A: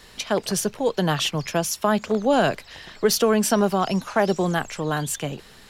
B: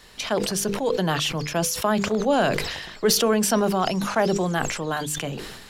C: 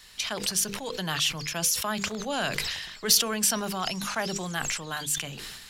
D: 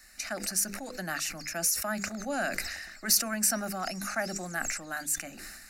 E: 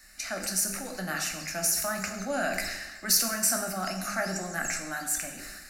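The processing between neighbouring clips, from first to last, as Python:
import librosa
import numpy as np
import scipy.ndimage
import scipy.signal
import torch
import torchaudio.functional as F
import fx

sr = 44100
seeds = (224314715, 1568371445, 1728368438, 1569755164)

y1 = fx.hum_notches(x, sr, base_hz=50, count=10)
y1 = fx.sustainer(y1, sr, db_per_s=43.0)
y1 = F.gain(torch.from_numpy(y1), -1.5).numpy()
y2 = fx.tone_stack(y1, sr, knobs='5-5-5')
y2 = F.gain(torch.from_numpy(y2), 7.5).numpy()
y3 = fx.fixed_phaser(y2, sr, hz=660.0, stages=8)
y4 = fx.rev_plate(y3, sr, seeds[0], rt60_s=1.0, hf_ratio=0.8, predelay_ms=0, drr_db=2.5)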